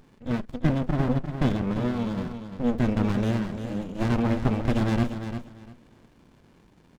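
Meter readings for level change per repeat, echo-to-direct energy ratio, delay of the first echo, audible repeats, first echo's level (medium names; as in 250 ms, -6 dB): -14.0 dB, -9.0 dB, 347 ms, 2, -9.0 dB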